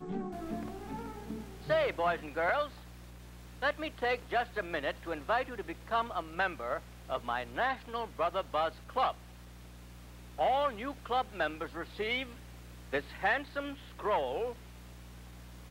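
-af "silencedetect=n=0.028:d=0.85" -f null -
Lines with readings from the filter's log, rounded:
silence_start: 2.66
silence_end: 3.63 | silence_duration: 0.97
silence_start: 9.11
silence_end: 10.39 | silence_duration: 1.28
silence_start: 14.50
silence_end: 15.70 | silence_duration: 1.20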